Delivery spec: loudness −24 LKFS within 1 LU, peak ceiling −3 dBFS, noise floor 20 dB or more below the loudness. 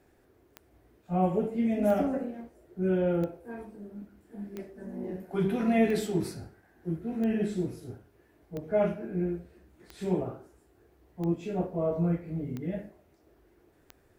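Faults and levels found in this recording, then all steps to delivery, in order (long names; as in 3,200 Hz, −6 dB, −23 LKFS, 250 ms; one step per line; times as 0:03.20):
number of clicks 11; integrated loudness −30.5 LKFS; sample peak −14.0 dBFS; target loudness −24.0 LKFS
→ click removal
level +6.5 dB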